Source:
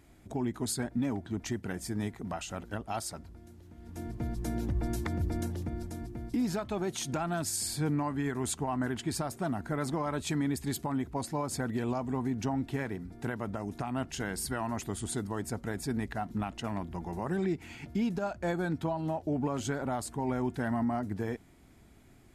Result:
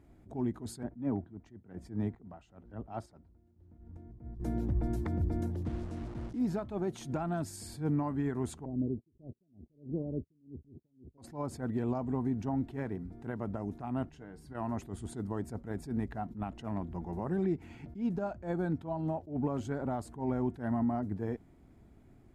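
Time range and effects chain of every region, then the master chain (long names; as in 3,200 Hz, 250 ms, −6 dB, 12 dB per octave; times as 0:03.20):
0:00.83–0:04.40: low-pass filter 2,000 Hz 6 dB per octave + square-wave tremolo 1.1 Hz, depth 60%, duty 45% + multiband upward and downward expander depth 40%
0:05.65–0:06.39: linear delta modulator 64 kbit/s, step −38 dBFS + low-pass filter 7,800 Hz
0:08.65–0:11.18: Butterworth low-pass 520 Hz + noise gate −44 dBFS, range −37 dB
0:14.09–0:14.55: high-shelf EQ 4,900 Hz −10 dB + tuned comb filter 150 Hz, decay 0.15 s, mix 70% + downward compressor 2 to 1, threshold −45 dBFS
whole clip: tilt shelving filter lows +7.5 dB, about 1,500 Hz; level that may rise only so fast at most 180 dB per second; level −7 dB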